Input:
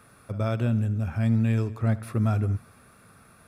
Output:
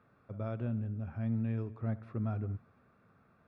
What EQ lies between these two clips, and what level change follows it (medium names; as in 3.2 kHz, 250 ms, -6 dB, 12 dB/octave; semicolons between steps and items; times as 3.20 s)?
tape spacing loss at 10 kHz 37 dB; bass shelf 71 Hz -10 dB; -8.0 dB